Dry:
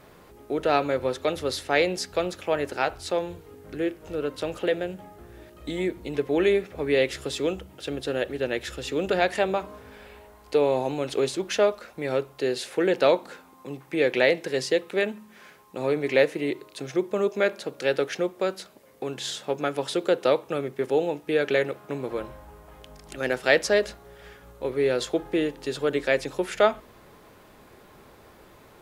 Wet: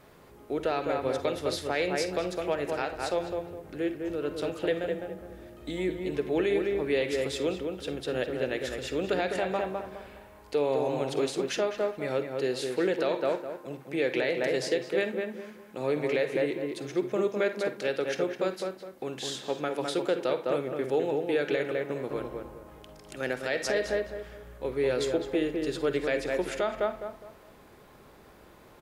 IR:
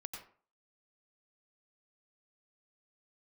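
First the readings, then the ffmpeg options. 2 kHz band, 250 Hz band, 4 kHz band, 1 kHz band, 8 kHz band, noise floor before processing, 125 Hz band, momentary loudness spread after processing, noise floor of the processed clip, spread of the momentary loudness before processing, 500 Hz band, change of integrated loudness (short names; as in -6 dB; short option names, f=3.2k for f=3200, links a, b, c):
-5.5 dB, -2.5 dB, -4.5 dB, -4.5 dB, -4.0 dB, -53 dBFS, -2.5 dB, 10 LU, -54 dBFS, 12 LU, -3.5 dB, -4.0 dB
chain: -filter_complex "[0:a]asplit=2[a][b];[b]adelay=206,lowpass=f=1.7k:p=1,volume=-4dB,asplit=2[c][d];[d]adelay=206,lowpass=f=1.7k:p=1,volume=0.33,asplit=2[e][f];[f]adelay=206,lowpass=f=1.7k:p=1,volume=0.33,asplit=2[g][h];[h]adelay=206,lowpass=f=1.7k:p=1,volume=0.33[i];[a][c][e][g][i]amix=inputs=5:normalize=0,asplit=2[j][k];[1:a]atrim=start_sample=2205,asetrate=83790,aresample=44100[l];[k][l]afir=irnorm=-1:irlink=0,volume=3.5dB[m];[j][m]amix=inputs=2:normalize=0,alimiter=limit=-10dB:level=0:latency=1:release=149,volume=-7dB"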